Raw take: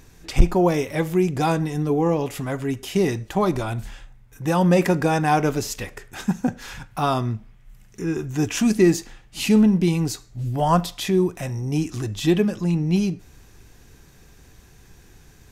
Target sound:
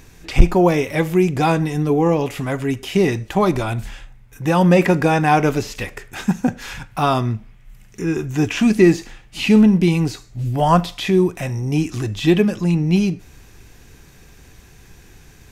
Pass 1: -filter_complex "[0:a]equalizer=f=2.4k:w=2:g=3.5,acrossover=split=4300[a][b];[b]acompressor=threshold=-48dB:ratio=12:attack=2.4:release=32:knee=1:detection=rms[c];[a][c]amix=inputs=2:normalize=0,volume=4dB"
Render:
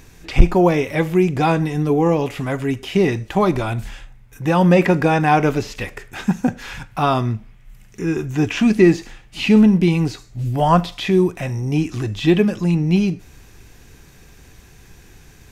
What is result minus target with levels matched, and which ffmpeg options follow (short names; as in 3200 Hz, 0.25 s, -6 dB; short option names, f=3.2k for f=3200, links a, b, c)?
compressor: peak gain reduction +6.5 dB
-filter_complex "[0:a]equalizer=f=2.4k:w=2:g=3.5,acrossover=split=4300[a][b];[b]acompressor=threshold=-41dB:ratio=12:attack=2.4:release=32:knee=1:detection=rms[c];[a][c]amix=inputs=2:normalize=0,volume=4dB"